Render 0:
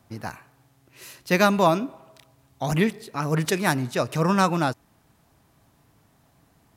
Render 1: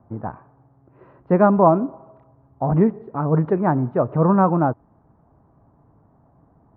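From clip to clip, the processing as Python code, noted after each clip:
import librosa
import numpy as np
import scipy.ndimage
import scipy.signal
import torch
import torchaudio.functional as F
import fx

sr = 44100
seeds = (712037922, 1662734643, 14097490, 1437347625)

y = scipy.signal.sosfilt(scipy.signal.butter(4, 1100.0, 'lowpass', fs=sr, output='sos'), x)
y = y * librosa.db_to_amplitude(5.5)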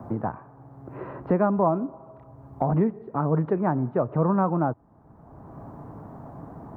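y = fx.band_squash(x, sr, depth_pct=70)
y = y * librosa.db_to_amplitude(-5.0)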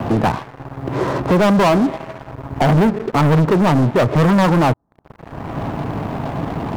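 y = fx.leveller(x, sr, passes=5)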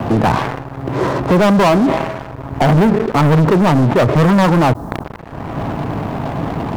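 y = fx.sustainer(x, sr, db_per_s=45.0)
y = y * librosa.db_to_amplitude(2.0)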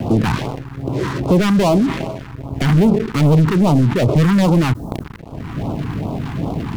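y = fx.phaser_stages(x, sr, stages=2, low_hz=550.0, high_hz=1800.0, hz=2.5, feedback_pct=5)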